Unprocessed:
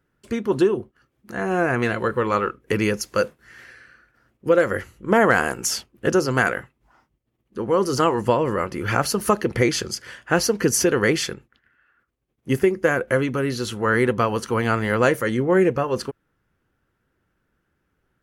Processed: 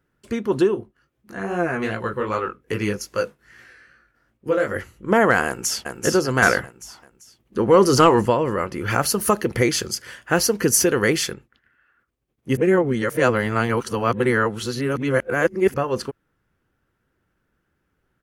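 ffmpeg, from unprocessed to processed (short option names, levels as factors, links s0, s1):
-filter_complex "[0:a]asplit=3[s0][s1][s2];[s0]afade=t=out:st=0.74:d=0.02[s3];[s1]flanger=delay=17:depth=4.5:speed=2.5,afade=t=in:st=0.74:d=0.02,afade=t=out:st=4.74:d=0.02[s4];[s2]afade=t=in:st=4.74:d=0.02[s5];[s3][s4][s5]amix=inputs=3:normalize=0,asplit=2[s6][s7];[s7]afade=t=in:st=5.46:d=0.01,afade=t=out:st=5.92:d=0.01,aecho=0:1:390|780|1170|1560:0.595662|0.208482|0.0729686|0.025539[s8];[s6][s8]amix=inputs=2:normalize=0,asettb=1/sr,asplit=3[s9][s10][s11];[s9]atrim=end=6.424[s12];[s10]atrim=start=6.42:end=8.26,asetpts=PTS-STARTPTS,afade=t=in:d=0.004:c=qsin,afade=t=out:st=1.836:d=0.004:c=qsin,acontrast=74[s13];[s11]atrim=start=8.256[s14];[s12][s13]acrossfade=d=0.004:c1=hsin:c2=qsin[s15];[s15][s14]acrossfade=d=0.004:c1=qsin:c2=hsin,asettb=1/sr,asplit=3[s16][s17][s18];[s16]atrim=end=8.904[s19];[s17]atrim=start=8.9:end=11.32,asetpts=PTS-STARTPTS,afade=t=in:d=0.004:c=qsin,afade=t=out:st=2.416:d=0.004:c=qsin,highshelf=f=10000:g=11[s20];[s18]atrim=start=11.316[s21];[s19][s20]acrossfade=d=0.004:c1=hsin:c2=qsin[s22];[s22][s21]acrossfade=d=0.004:c1=qsin:c2=hsin,asplit=3[s23][s24][s25];[s23]atrim=end=12.572[s26];[s24]atrim=start=12.568:end=15.742,asetpts=PTS-STARTPTS,areverse[s27];[s25]atrim=start=15.738[s28];[s26][s27]acrossfade=d=0.004:c1=hsin:c2=hsin[s29];[s29][s28]acrossfade=d=0.004:c1=hsin:c2=hsin"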